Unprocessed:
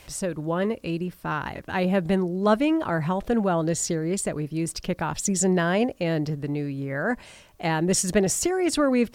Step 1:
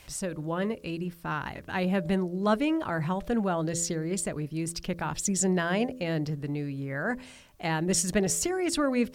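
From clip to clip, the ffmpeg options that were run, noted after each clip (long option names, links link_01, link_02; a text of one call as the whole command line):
ffmpeg -i in.wav -af "equalizer=frequency=520:width=0.63:gain=-3,bandreject=frequency=84.68:width_type=h:width=4,bandreject=frequency=169.36:width_type=h:width=4,bandreject=frequency=254.04:width_type=h:width=4,bandreject=frequency=338.72:width_type=h:width=4,bandreject=frequency=423.4:width_type=h:width=4,bandreject=frequency=508.08:width_type=h:width=4,bandreject=frequency=592.76:width_type=h:width=4,volume=-2.5dB" out.wav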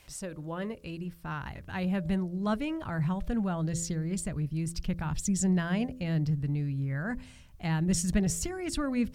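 ffmpeg -i in.wav -af "asubboost=boost=6.5:cutoff=160,volume=-5.5dB" out.wav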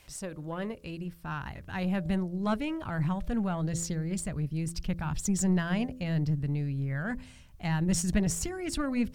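ffmpeg -i in.wav -af "aeval=exprs='0.188*(cos(1*acos(clip(val(0)/0.188,-1,1)))-cos(1*PI/2))+0.0168*(cos(4*acos(clip(val(0)/0.188,-1,1)))-cos(4*PI/2))+0.00531*(cos(6*acos(clip(val(0)/0.188,-1,1)))-cos(6*PI/2))+0.00376*(cos(8*acos(clip(val(0)/0.188,-1,1)))-cos(8*PI/2))':channel_layout=same" out.wav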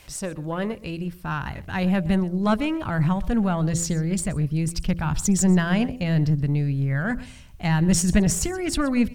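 ffmpeg -i in.wav -af "aecho=1:1:125:0.1,volume=8dB" out.wav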